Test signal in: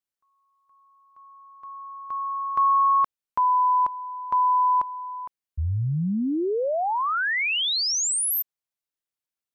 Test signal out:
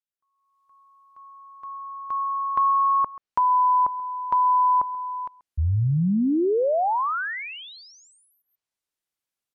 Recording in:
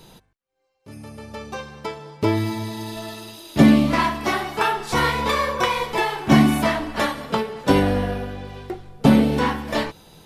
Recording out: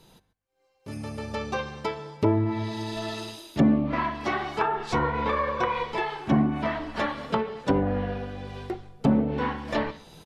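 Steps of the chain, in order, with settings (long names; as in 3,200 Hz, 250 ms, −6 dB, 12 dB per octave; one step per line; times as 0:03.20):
slap from a distant wall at 23 metres, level −21 dB
automatic gain control gain up to 12.5 dB
treble cut that deepens with the level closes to 1,100 Hz, closed at −10 dBFS
level −9 dB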